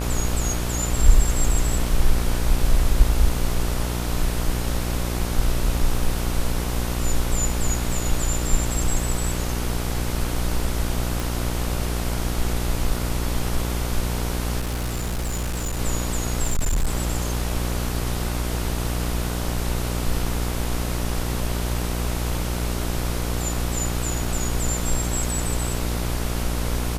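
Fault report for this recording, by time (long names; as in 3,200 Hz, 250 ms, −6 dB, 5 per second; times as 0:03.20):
mains buzz 60 Hz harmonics 25 −26 dBFS
0:11.20: click
0:14.60–0:15.80: clipping −22.5 dBFS
0:16.43–0:16.94: clipping −17 dBFS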